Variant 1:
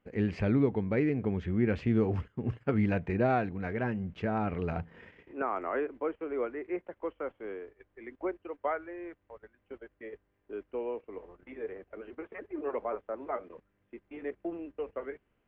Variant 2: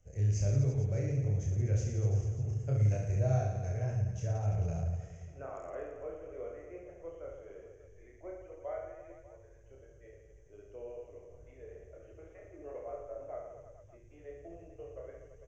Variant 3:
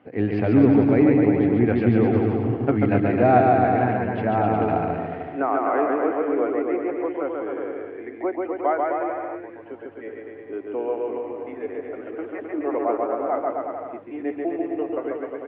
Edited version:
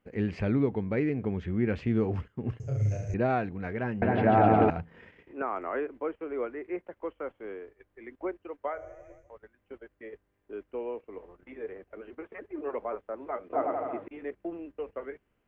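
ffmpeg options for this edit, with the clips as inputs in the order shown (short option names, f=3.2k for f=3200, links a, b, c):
-filter_complex "[1:a]asplit=2[a][b];[2:a]asplit=2[c][d];[0:a]asplit=5[e][f][g][h][i];[e]atrim=end=2.602[j];[a]atrim=start=2.598:end=3.142[k];[f]atrim=start=3.138:end=4.022[l];[c]atrim=start=4.018:end=4.702[m];[g]atrim=start=4.698:end=8.86[n];[b]atrim=start=8.62:end=9.36[o];[h]atrim=start=9.12:end=13.532[p];[d]atrim=start=13.528:end=14.082[q];[i]atrim=start=14.078[r];[j][k]acrossfade=d=0.004:c1=hsin:c2=hsin[s];[s][l]acrossfade=d=0.004:c1=hsin:c2=hsin[t];[t][m]acrossfade=d=0.004:c1=hsin:c2=hsin[u];[u][n]acrossfade=d=0.004:c1=hsin:c2=hsin[v];[v][o]acrossfade=d=0.24:c1=tri:c2=tri[w];[w][p]acrossfade=d=0.24:c1=tri:c2=tri[x];[x][q]acrossfade=d=0.004:c1=hsin:c2=hsin[y];[y][r]acrossfade=d=0.004:c1=hsin:c2=hsin"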